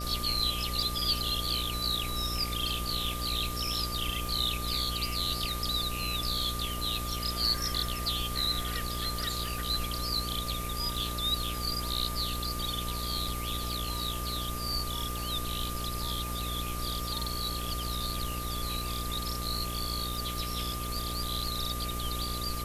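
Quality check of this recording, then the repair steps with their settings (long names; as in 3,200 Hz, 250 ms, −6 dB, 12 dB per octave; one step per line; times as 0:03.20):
mains buzz 60 Hz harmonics 11 −37 dBFS
surface crackle 45 per second −36 dBFS
whistle 1,200 Hz −39 dBFS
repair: click removal
notch filter 1,200 Hz, Q 30
hum removal 60 Hz, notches 11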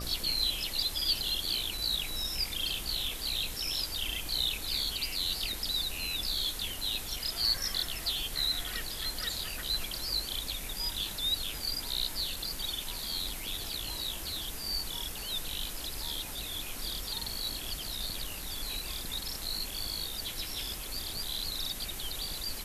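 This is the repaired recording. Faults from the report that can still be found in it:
none of them is left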